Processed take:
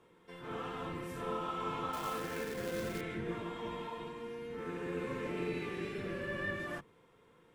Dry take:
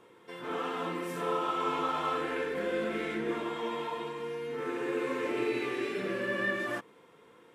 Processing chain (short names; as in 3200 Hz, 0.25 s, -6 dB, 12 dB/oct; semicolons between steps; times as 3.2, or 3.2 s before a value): octaver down 1 oct, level 0 dB; 1.93–3.01 companded quantiser 4-bit; gain -7 dB